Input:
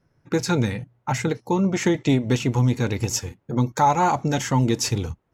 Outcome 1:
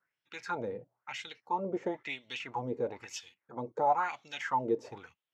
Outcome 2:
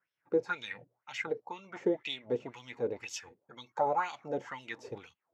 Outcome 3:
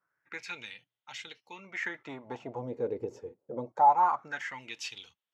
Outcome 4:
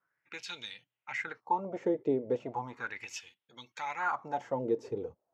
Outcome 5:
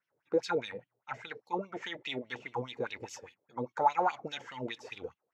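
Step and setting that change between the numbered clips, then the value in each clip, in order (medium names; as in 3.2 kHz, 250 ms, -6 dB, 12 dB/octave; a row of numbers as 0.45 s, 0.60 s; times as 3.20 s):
wah-wah, rate: 1 Hz, 2 Hz, 0.24 Hz, 0.36 Hz, 4.9 Hz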